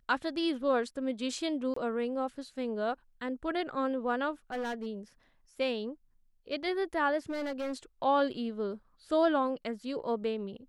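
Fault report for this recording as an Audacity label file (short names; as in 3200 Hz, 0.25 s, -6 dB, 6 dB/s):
1.740000	1.760000	gap 24 ms
4.520000	4.870000	clipped -31.5 dBFS
7.290000	7.730000	clipped -31.5 dBFS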